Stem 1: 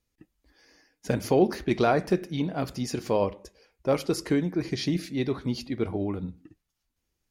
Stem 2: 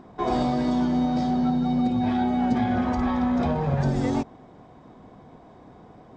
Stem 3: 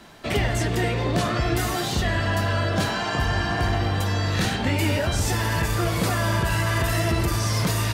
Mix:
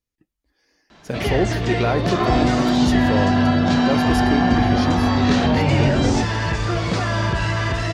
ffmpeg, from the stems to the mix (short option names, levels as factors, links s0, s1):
-filter_complex "[0:a]volume=0.422[s0];[1:a]adelay=2000,volume=0.631[s1];[2:a]lowpass=f=6200:w=0.5412,lowpass=f=6200:w=1.3066,adelay=900,volume=0.447[s2];[s0][s1][s2]amix=inputs=3:normalize=0,dynaudnorm=f=150:g=13:m=2.82"